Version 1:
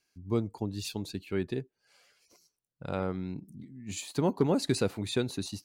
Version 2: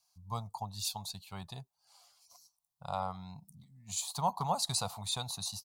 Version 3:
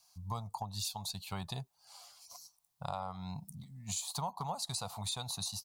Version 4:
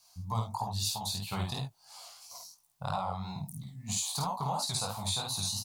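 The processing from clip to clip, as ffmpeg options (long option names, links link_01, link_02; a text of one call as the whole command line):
ffmpeg -i in.wav -af "firequalizer=gain_entry='entry(160,0);entry(320,-26);entry(720,13);entry(1100,13);entry(1600,-8);entry(2500,-3);entry(3700,9);entry(11000,13)':delay=0.05:min_phase=1,volume=-6.5dB" out.wav
ffmpeg -i in.wav -af "acompressor=threshold=-44dB:ratio=6,volume=8dB" out.wav
ffmpeg -i in.wav -af "aecho=1:1:52|71:0.668|0.158,flanger=delay=15.5:depth=7.3:speed=3,volume=7dB" out.wav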